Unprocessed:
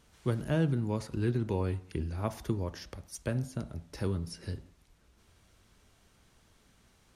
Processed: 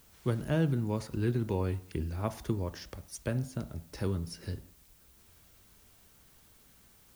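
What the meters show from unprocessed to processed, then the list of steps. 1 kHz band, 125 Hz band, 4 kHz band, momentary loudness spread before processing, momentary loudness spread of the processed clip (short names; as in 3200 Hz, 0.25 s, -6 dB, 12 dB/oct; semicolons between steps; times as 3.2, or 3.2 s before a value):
0.0 dB, 0.0 dB, 0.0 dB, 12 LU, 12 LU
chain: added noise blue -63 dBFS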